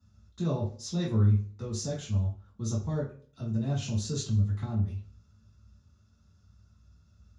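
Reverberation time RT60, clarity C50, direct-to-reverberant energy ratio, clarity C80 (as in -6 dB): 0.45 s, 7.0 dB, -6.5 dB, 12.0 dB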